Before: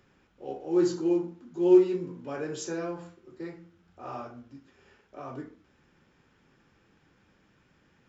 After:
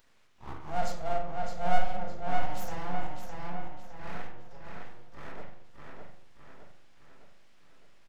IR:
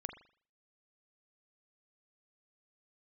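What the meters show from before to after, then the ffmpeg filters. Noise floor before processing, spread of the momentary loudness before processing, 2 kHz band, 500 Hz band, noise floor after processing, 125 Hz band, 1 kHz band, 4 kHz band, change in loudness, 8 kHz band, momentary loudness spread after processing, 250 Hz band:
-66 dBFS, 22 LU, +5.5 dB, -11.0 dB, -60 dBFS, +1.5 dB, +9.0 dB, 0.0 dB, -9.0 dB, n/a, 20 LU, -16.5 dB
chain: -filter_complex "[0:a]acrossover=split=100|580|1700[a][b][c][d];[d]acompressor=mode=upward:threshold=-58dB:ratio=2.5[e];[a][b][c][e]amix=inputs=4:normalize=0,aeval=exprs='abs(val(0))':c=same,asplit=2[f][g];[g]adelay=611,lowpass=f=4.8k:p=1,volume=-3.5dB,asplit=2[h][i];[i]adelay=611,lowpass=f=4.8k:p=1,volume=0.52,asplit=2[j][k];[k]adelay=611,lowpass=f=4.8k:p=1,volume=0.52,asplit=2[l][m];[m]adelay=611,lowpass=f=4.8k:p=1,volume=0.52,asplit=2[n][o];[o]adelay=611,lowpass=f=4.8k:p=1,volume=0.52,asplit=2[p][q];[q]adelay=611,lowpass=f=4.8k:p=1,volume=0.52,asplit=2[r][s];[s]adelay=611,lowpass=f=4.8k:p=1,volume=0.52[t];[f][h][j][l][n][p][r][t]amix=inputs=8:normalize=0[u];[1:a]atrim=start_sample=2205[v];[u][v]afir=irnorm=-1:irlink=0"

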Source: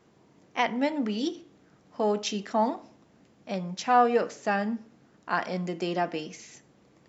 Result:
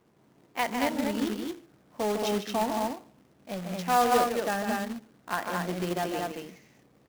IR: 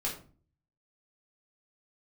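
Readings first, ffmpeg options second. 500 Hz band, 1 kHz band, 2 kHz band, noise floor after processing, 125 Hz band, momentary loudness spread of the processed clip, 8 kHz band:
-1.0 dB, -1.0 dB, -0.5 dB, -63 dBFS, 0.0 dB, 15 LU, n/a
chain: -af "aecho=1:1:151.6|224.5:0.501|0.708,adynamicsmooth=sensitivity=4:basefreq=2.6k,acrusher=bits=2:mode=log:mix=0:aa=0.000001,volume=-3.5dB"

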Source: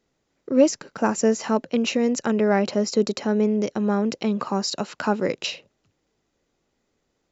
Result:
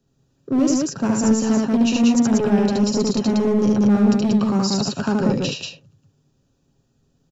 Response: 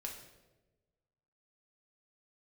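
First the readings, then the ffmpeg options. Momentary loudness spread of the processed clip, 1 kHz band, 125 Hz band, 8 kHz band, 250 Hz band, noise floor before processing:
6 LU, -0.5 dB, +8.5 dB, n/a, +7.0 dB, -74 dBFS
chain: -filter_complex "[0:a]asuperstop=centerf=2100:order=4:qfactor=4.5,equalizer=f=130:w=0.64:g=8,aecho=1:1:7.4:0.32,acrossover=split=170|3000[a][b][c];[b]alimiter=limit=-13dB:level=0:latency=1:release=17[d];[a][d][c]amix=inputs=3:normalize=0,bass=f=250:g=9,treble=f=4k:g=4,asoftclip=type=hard:threshold=-11.5dB,asplit=2[e][f];[f]aecho=0:1:72.89|186.6:0.794|0.794[g];[e][g]amix=inputs=2:normalize=0,volume=-3.5dB"

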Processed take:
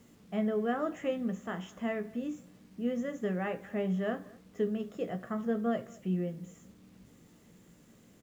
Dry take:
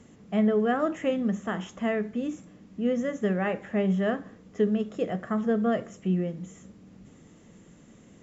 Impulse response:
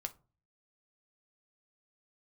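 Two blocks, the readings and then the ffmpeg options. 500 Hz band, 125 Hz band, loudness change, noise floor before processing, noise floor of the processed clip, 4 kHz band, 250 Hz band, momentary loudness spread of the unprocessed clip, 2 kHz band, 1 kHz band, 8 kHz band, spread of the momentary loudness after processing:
-6.5 dB, -6.5 dB, -6.5 dB, -54 dBFS, -60 dBFS, -6.5 dB, -7.0 dB, 10 LU, -6.5 dB, -6.5 dB, n/a, 9 LU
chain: -filter_complex "[0:a]acrusher=bits=9:mix=0:aa=0.000001,asplit=2[a][b];[b]adelay=221.6,volume=-24dB,highshelf=f=4k:g=-4.99[c];[a][c]amix=inputs=2:normalize=0,asplit=2[d][e];[1:a]atrim=start_sample=2205,adelay=17[f];[e][f]afir=irnorm=-1:irlink=0,volume=-7.5dB[g];[d][g]amix=inputs=2:normalize=0,volume=-7dB"

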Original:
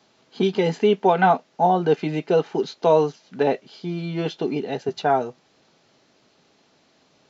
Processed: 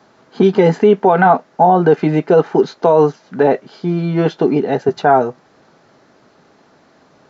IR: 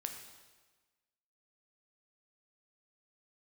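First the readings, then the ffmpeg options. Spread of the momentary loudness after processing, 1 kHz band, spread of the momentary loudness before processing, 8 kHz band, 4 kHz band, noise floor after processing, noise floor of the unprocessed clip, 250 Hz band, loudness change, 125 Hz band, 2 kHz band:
6 LU, +7.0 dB, 10 LU, n/a, 0.0 dB, -52 dBFS, -62 dBFS, +9.5 dB, +8.0 dB, +9.5 dB, +7.0 dB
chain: -af "highshelf=f=2.1k:t=q:w=1.5:g=-7.5,alimiter=level_in=11.5dB:limit=-1dB:release=50:level=0:latency=1,volume=-1dB"

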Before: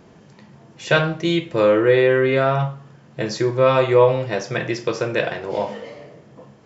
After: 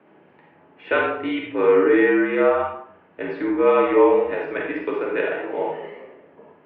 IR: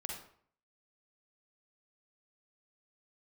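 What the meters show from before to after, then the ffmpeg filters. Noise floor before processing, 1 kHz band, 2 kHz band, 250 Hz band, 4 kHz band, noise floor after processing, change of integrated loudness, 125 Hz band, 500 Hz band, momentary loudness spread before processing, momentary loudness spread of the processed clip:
-49 dBFS, -0.5 dB, -1.0 dB, +1.0 dB, under -10 dB, -54 dBFS, -1.0 dB, under -15 dB, -1.0 dB, 13 LU, 13 LU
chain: -filter_complex "[0:a]highpass=f=280:t=q:w=0.5412,highpass=f=280:t=q:w=1.307,lowpass=f=2.8k:t=q:w=0.5176,lowpass=f=2.8k:t=q:w=0.7071,lowpass=f=2.8k:t=q:w=1.932,afreqshift=-51,bandreject=f=60:t=h:w=6,bandreject=f=120:t=h:w=6,bandreject=f=180:t=h:w=6,bandreject=f=240:t=h:w=6,bandreject=f=300:t=h:w=6,bandreject=f=360:t=h:w=6[a];[1:a]atrim=start_sample=2205[b];[a][b]afir=irnorm=-1:irlink=0"

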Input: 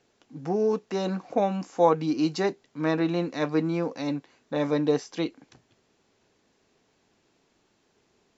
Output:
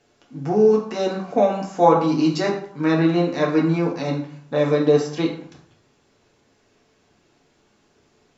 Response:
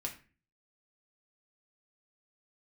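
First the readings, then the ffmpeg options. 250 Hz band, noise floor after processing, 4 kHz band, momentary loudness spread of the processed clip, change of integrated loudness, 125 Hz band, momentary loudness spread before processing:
+6.5 dB, -62 dBFS, +5.5 dB, 10 LU, +7.0 dB, +8.0 dB, 9 LU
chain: -filter_complex "[1:a]atrim=start_sample=2205,asetrate=25578,aresample=44100[a];[0:a][a]afir=irnorm=-1:irlink=0,volume=3dB"

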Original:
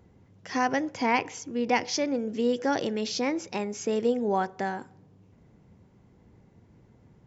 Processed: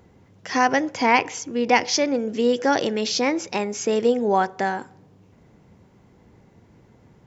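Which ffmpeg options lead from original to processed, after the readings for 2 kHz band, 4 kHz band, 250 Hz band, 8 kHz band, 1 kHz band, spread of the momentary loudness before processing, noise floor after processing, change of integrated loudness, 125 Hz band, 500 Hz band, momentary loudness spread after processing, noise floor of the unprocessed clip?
+8.0 dB, +8.0 dB, +4.5 dB, n/a, +7.5 dB, 7 LU, -55 dBFS, +6.5 dB, +3.5 dB, +6.5 dB, 7 LU, -59 dBFS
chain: -af "lowshelf=f=300:g=-6,volume=8dB"

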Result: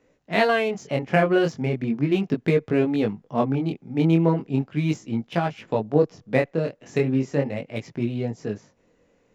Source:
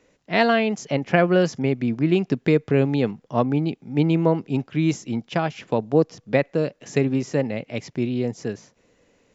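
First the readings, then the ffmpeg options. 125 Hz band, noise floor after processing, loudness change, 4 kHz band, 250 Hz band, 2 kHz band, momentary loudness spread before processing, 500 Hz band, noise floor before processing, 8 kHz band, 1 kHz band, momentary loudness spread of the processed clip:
-1.0 dB, -65 dBFS, -1.5 dB, -2.5 dB, -1.5 dB, -1.0 dB, 8 LU, -1.0 dB, -66 dBFS, n/a, -1.0 dB, 8 LU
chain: -filter_complex "[0:a]asplit=2[a][b];[b]adynamicsmooth=sensitivity=6:basefreq=2.5k,volume=-0.5dB[c];[a][c]amix=inputs=2:normalize=0,flanger=delay=17.5:depth=7.1:speed=0.37,volume=-4dB"

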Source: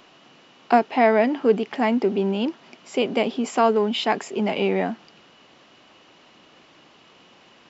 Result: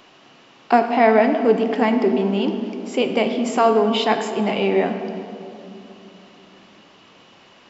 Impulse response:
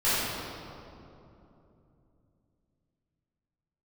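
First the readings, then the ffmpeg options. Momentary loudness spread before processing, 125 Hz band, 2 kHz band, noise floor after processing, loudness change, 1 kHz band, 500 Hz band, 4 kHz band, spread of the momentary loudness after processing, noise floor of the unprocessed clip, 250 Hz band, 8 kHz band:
8 LU, +3.0 dB, +2.5 dB, -50 dBFS, +3.0 dB, +3.0 dB, +3.5 dB, +2.5 dB, 13 LU, -54 dBFS, +3.5 dB, n/a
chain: -filter_complex "[0:a]asplit=2[a][b];[1:a]atrim=start_sample=2205[c];[b][c]afir=irnorm=-1:irlink=0,volume=-20.5dB[d];[a][d]amix=inputs=2:normalize=0,volume=1.5dB"

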